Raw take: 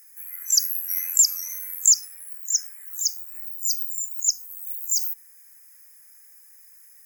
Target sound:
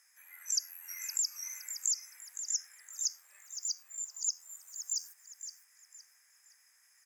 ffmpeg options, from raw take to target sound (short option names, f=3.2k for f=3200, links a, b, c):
-filter_complex "[0:a]acompressor=threshold=-24dB:ratio=3,highpass=710,lowpass=6.4k,asplit=2[a][b];[b]aecho=0:1:515|1030|1545|2060:0.316|0.101|0.0324|0.0104[c];[a][c]amix=inputs=2:normalize=0,volume=-3dB"